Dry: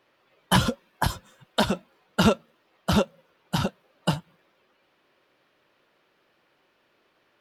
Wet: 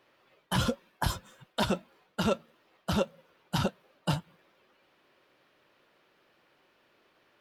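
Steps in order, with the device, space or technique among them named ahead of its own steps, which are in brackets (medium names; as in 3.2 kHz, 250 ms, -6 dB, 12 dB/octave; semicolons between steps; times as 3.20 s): compression on the reversed sound (reverse; compression 12:1, threshold -24 dBFS, peak gain reduction 10.5 dB; reverse)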